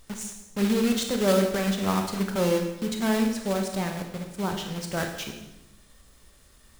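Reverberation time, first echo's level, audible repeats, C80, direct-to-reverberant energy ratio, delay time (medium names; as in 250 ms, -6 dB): 0.90 s, no echo, no echo, 8.5 dB, 3.5 dB, no echo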